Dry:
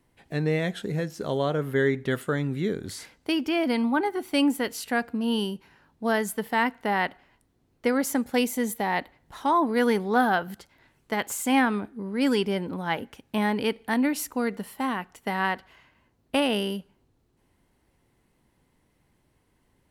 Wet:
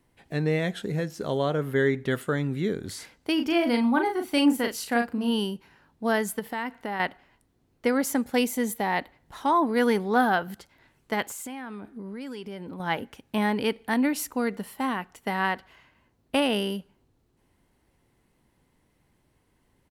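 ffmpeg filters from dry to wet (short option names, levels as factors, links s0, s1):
-filter_complex "[0:a]asplit=3[s0][s1][s2];[s0]afade=t=out:st=3.37:d=0.02[s3];[s1]asplit=2[s4][s5];[s5]adelay=38,volume=0.531[s6];[s4][s6]amix=inputs=2:normalize=0,afade=t=in:st=3.37:d=0.02,afade=t=out:st=5.29:d=0.02[s7];[s2]afade=t=in:st=5.29:d=0.02[s8];[s3][s7][s8]amix=inputs=3:normalize=0,asettb=1/sr,asplit=3[s9][s10][s11];[s9]atrim=end=6.394[s12];[s10]atrim=start=6.39:end=7,asetpts=PTS-STARTPTS,afade=t=in:d=0.004:c=qsin,afade=t=out:st=0.606:d=0.004:c=qsin,acompressor=threshold=0.0355:ratio=3:attack=3.2:release=140:knee=1:detection=peak[s13];[s11]atrim=start=6.996[s14];[s12][s13]acrossfade=d=0.004:c1=hsin:c2=qsin[s15];[s15][s14]acrossfade=d=0.004:c1=qsin:c2=hsin,asettb=1/sr,asplit=3[s16][s17][s18];[s16]atrim=end=11.224[s19];[s17]atrim=start=11.22:end=12.8,asetpts=PTS-STARTPTS,afade=t=in:d=0.004:c=qsin,afade=t=out:st=1.576:d=0.004:c=qsin,acompressor=threshold=0.02:ratio=8:attack=3.2:release=140:knee=1:detection=peak[s20];[s18]atrim=start=12.796[s21];[s19][s20]acrossfade=d=0.004:c1=hsin:c2=qsin[s22];[s22][s21]acrossfade=d=0.004:c1=qsin:c2=hsin"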